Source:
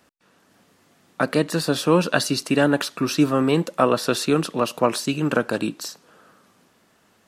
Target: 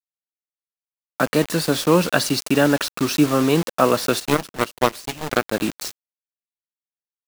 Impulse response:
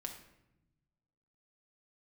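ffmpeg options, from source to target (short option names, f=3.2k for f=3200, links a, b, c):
-filter_complex "[0:a]acrusher=bits=4:mix=0:aa=0.000001,asplit=3[a][b][c];[a]afade=t=out:st=4.19:d=0.02[d];[b]aeval=exprs='0.631*(cos(1*acos(clip(val(0)/0.631,-1,1)))-cos(1*PI/2))+0.126*(cos(7*acos(clip(val(0)/0.631,-1,1)))-cos(7*PI/2))':c=same,afade=t=in:st=4.19:d=0.02,afade=t=out:st=5.51:d=0.02[e];[c]afade=t=in:st=5.51:d=0.02[f];[d][e][f]amix=inputs=3:normalize=0,volume=1.5dB"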